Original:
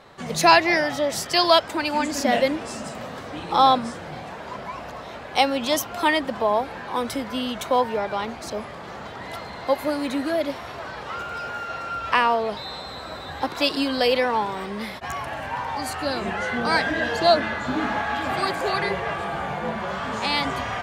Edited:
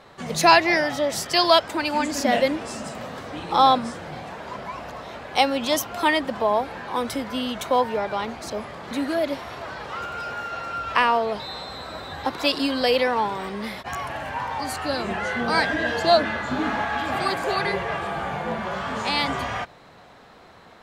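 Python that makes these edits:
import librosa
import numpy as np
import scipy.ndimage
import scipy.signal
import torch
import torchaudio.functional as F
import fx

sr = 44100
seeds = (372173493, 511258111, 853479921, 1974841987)

y = fx.edit(x, sr, fx.cut(start_s=8.91, length_s=1.17), tone=tone)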